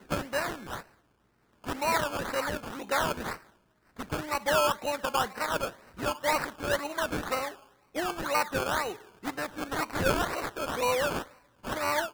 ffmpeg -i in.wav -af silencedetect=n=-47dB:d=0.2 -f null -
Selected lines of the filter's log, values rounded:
silence_start: 0.83
silence_end: 1.64 | silence_duration: 0.81
silence_start: 3.47
silence_end: 3.97 | silence_duration: 0.50
silence_start: 7.63
silence_end: 7.95 | silence_duration: 0.32
silence_start: 11.33
silence_end: 11.64 | silence_duration: 0.30